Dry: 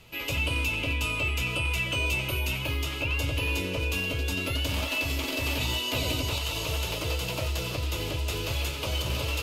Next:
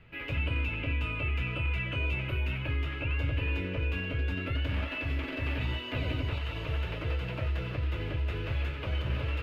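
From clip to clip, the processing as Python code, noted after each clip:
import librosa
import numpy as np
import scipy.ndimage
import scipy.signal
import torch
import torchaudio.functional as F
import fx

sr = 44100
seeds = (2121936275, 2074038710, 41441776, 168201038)

y = fx.curve_eq(x, sr, hz=(130.0, 1000.0, 1700.0, 6800.0), db=(0, -8, 3, -30))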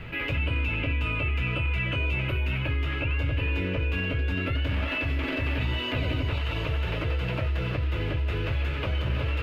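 y = fx.env_flatten(x, sr, amount_pct=50)
y = y * 10.0 ** (2.5 / 20.0)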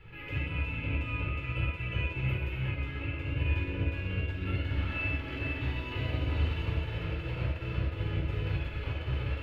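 y = fx.comb_fb(x, sr, f0_hz=850.0, decay_s=0.39, harmonics='all', damping=0.0, mix_pct=70)
y = fx.room_shoebox(y, sr, seeds[0], volume_m3=2000.0, walls='mixed', distance_m=4.2)
y = fx.upward_expand(y, sr, threshold_db=-35.0, expansion=1.5)
y = y * 10.0 ** (-1.5 / 20.0)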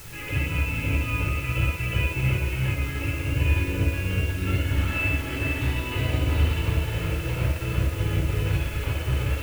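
y = fx.dmg_noise_colour(x, sr, seeds[1], colour='white', level_db=-53.0)
y = y * 10.0 ** (7.5 / 20.0)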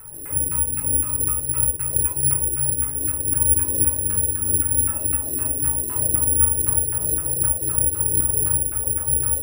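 y = fx.filter_lfo_lowpass(x, sr, shape='saw_down', hz=3.9, low_hz=320.0, high_hz=1500.0, q=2.4)
y = (np.kron(y[::4], np.eye(4)[0]) * 4)[:len(y)]
y = fx.high_shelf(y, sr, hz=5100.0, db=4.5)
y = y * 10.0 ** (-6.5 / 20.0)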